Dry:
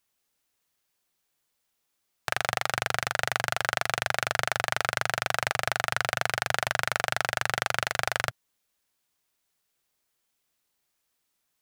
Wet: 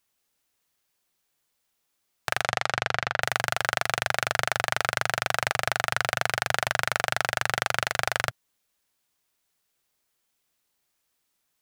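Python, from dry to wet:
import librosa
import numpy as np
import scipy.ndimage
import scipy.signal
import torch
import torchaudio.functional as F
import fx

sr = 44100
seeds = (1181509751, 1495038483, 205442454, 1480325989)

y = fx.lowpass(x, sr, hz=fx.line((2.42, 8500.0), (3.21, 3500.0)), slope=12, at=(2.42, 3.21), fade=0.02)
y = y * 10.0 ** (1.5 / 20.0)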